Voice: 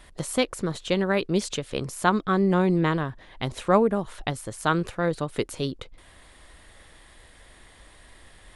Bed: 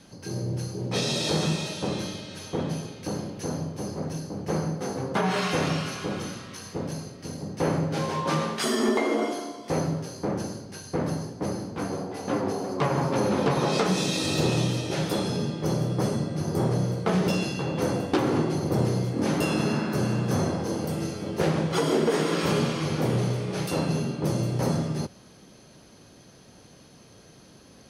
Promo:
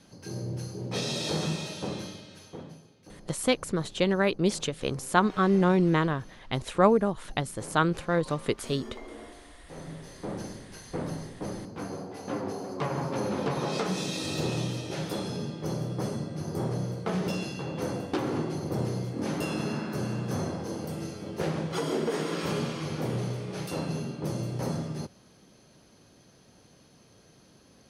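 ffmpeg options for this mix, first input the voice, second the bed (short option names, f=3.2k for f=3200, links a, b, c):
-filter_complex "[0:a]adelay=3100,volume=-1dB[a];[1:a]volume=9dB,afade=t=out:st=1.82:d=0.98:silence=0.177828,afade=t=in:st=9.72:d=0.7:silence=0.211349[b];[a][b]amix=inputs=2:normalize=0"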